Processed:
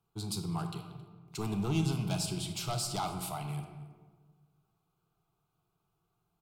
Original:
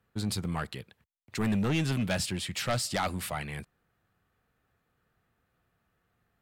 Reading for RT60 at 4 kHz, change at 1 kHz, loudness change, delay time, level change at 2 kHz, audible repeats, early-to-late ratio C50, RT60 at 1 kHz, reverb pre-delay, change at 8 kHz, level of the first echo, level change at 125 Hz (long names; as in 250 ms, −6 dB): 0.80 s, −2.5 dB, −3.5 dB, 270 ms, −11.5 dB, 1, 7.0 dB, 1.4 s, 25 ms, −2.0 dB, −21.5 dB, −1.5 dB